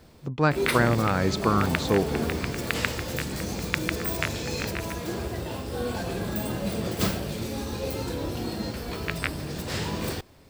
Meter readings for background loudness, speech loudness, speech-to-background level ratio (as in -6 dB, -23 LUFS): -30.0 LUFS, -26.0 LUFS, 4.0 dB